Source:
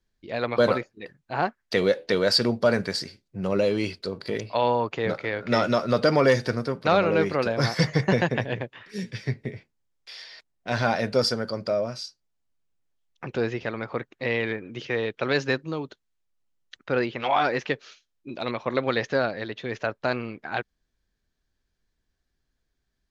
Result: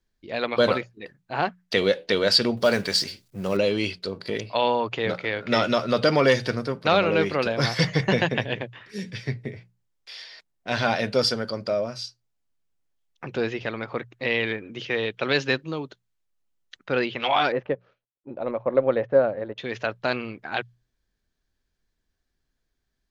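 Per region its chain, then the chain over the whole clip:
0:02.57–0:03.57: mu-law and A-law mismatch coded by mu + bass and treble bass −2 dB, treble +6 dB
0:17.52–0:19.58: mu-law and A-law mismatch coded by A + low-pass filter 1,100 Hz + parametric band 550 Hz +9.5 dB 0.33 octaves
whole clip: mains-hum notches 60/120/180 Hz; dynamic equaliser 3,100 Hz, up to +8 dB, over −46 dBFS, Q 1.7

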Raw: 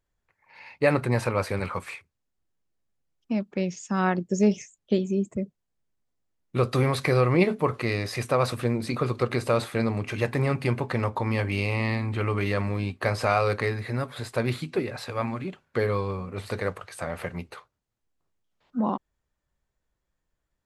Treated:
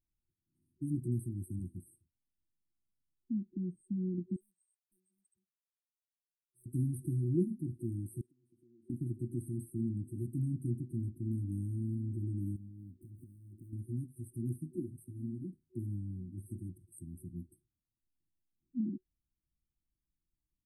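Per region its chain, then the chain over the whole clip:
0:04.36–0:06.66: gain into a clipping stage and back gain 18 dB + inverse Chebyshev high-pass filter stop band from 650 Hz
0:08.21–0:08.90: downward compressor 4 to 1, threshold −30 dBFS + formant filter e
0:12.56–0:13.73: running median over 25 samples + downward compressor 8 to 1, threshold −36 dBFS
whole clip: brick-wall band-stop 370–8,200 Hz; dynamic equaliser 3,000 Hz, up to −7 dB, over −59 dBFS, Q 0.78; level −8 dB

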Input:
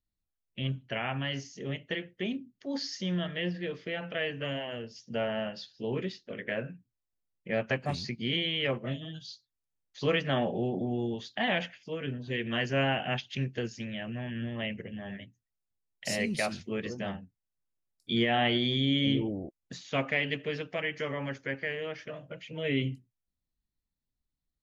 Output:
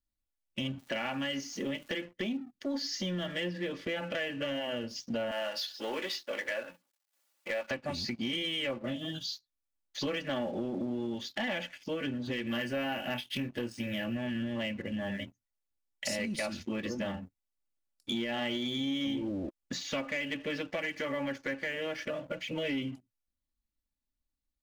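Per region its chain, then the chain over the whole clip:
0:00.78–0:02.00: high-pass filter 140 Hz 24 dB per octave + surface crackle 380 per second −52 dBFS
0:05.31–0:07.71: mu-law and A-law mismatch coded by mu + high-pass filter 610 Hz
0:12.48–0:14.17: double-tracking delay 25 ms −8 dB + linearly interpolated sample-rate reduction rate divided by 3×
whole clip: comb filter 3.5 ms, depth 60%; downward compressor 5 to 1, threshold −39 dBFS; leveller curve on the samples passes 2

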